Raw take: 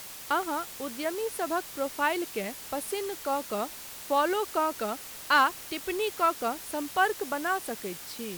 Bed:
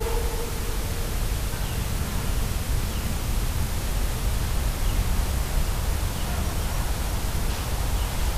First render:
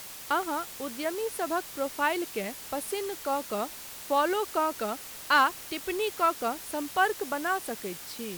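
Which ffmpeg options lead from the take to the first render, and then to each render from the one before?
-af anull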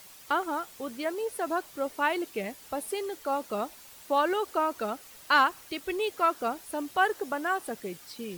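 -af "afftdn=nr=9:nf=-43"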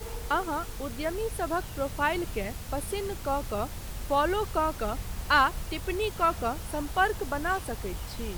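-filter_complex "[1:a]volume=-12dB[a];[0:a][a]amix=inputs=2:normalize=0"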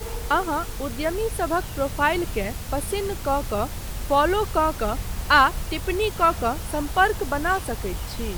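-af "volume=6dB"

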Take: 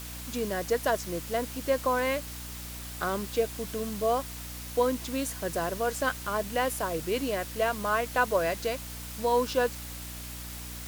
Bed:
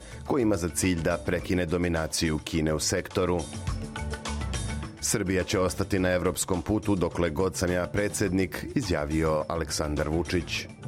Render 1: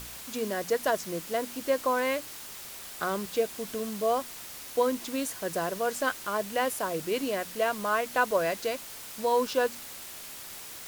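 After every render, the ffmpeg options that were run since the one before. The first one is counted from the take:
-af "bandreject=f=60:t=h:w=4,bandreject=f=120:t=h:w=4,bandreject=f=180:t=h:w=4,bandreject=f=240:t=h:w=4,bandreject=f=300:t=h:w=4"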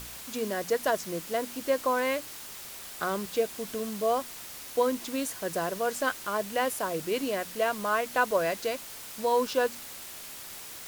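-af anull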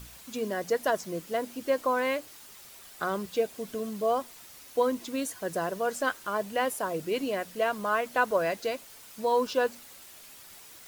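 -af "afftdn=nr=8:nf=-43"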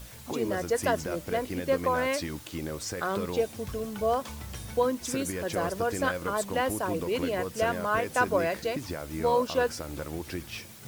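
-filter_complex "[1:a]volume=-9dB[a];[0:a][a]amix=inputs=2:normalize=0"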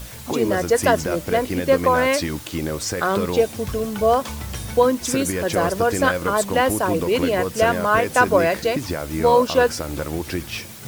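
-af "volume=9.5dB,alimiter=limit=-2dB:level=0:latency=1"

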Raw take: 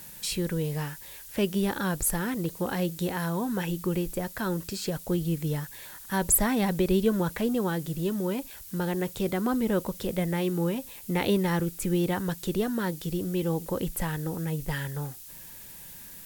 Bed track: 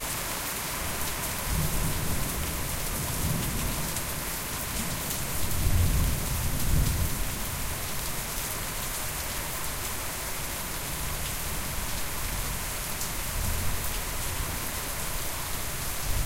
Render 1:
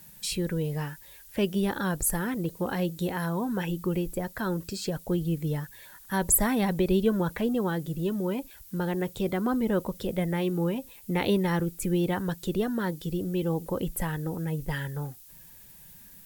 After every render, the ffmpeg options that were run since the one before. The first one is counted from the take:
-af "afftdn=nr=8:nf=-45"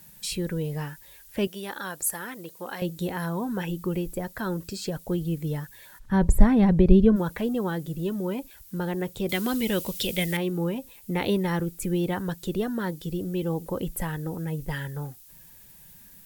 -filter_complex "[0:a]asettb=1/sr,asplit=3[a][b][c];[a]atrim=end=1.474[d];[b]atrim=start=1.47:end=2.82,asetpts=PTS-STARTPTS,afade=t=in:d=0.004:c=qsin,afade=t=out:st=1.346:d=0.004:c=qsin,highpass=f=860:p=1[e];[c]atrim=start=2.816[f];[d][e]acrossfade=d=0.004:c1=hsin:c2=qsin[g];[g][f]acrossfade=d=0.004:c1=qsin:c2=hsin,asplit=3[h][i][j];[h]afade=t=out:st=5.98:d=0.02[k];[i]aemphasis=mode=reproduction:type=riaa,afade=t=in:st=5.98:d=0.02,afade=t=out:st=7.15:d=0.02[l];[j]afade=t=in:st=7.15:d=0.02[m];[k][l][m]amix=inputs=3:normalize=0,asettb=1/sr,asplit=3[n][o][p];[n]atrim=end=9.294[q];[o]atrim=start=9.29:end=10.37,asetpts=PTS-STARTPTS,afade=t=in:d=0.004:c=qsin,afade=t=out:st=1.076:d=0.004:c=qsin,highshelf=f=1.8k:t=q:w=1.5:g=13[r];[p]atrim=start=10.366[s];[q][r]acrossfade=d=0.004:c1=hsin:c2=qsin[t];[t][s]acrossfade=d=0.004:c1=qsin:c2=hsin"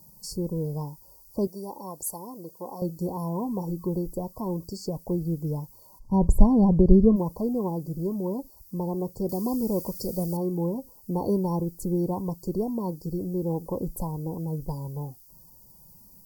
-af "afftfilt=real='re*(1-between(b*sr/4096,1100,4400))':imag='im*(1-between(b*sr/4096,1100,4400))':win_size=4096:overlap=0.75,equalizer=f=9.2k:t=o:w=1.5:g=-6"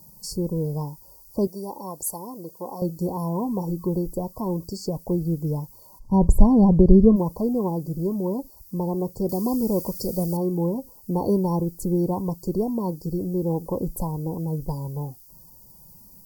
-af "volume=3.5dB,alimiter=limit=-1dB:level=0:latency=1"

